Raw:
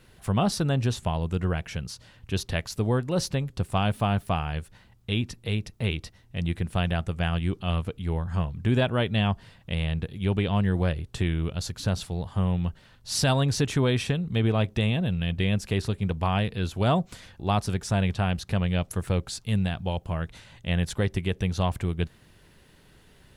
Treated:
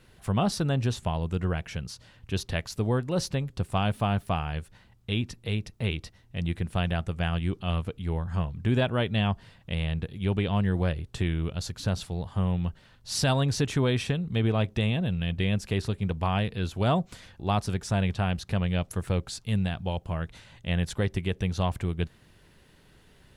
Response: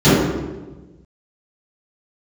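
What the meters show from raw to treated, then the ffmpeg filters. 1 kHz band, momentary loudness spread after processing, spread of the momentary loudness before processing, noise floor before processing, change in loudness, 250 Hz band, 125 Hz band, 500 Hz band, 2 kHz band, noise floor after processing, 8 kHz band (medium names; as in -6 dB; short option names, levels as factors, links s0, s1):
-1.5 dB, 8 LU, 8 LU, -57 dBFS, -1.5 dB, -1.5 dB, -1.5 dB, -1.5 dB, -1.5 dB, -58 dBFS, -2.5 dB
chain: -af "highshelf=f=10000:g=-3.5,volume=0.841"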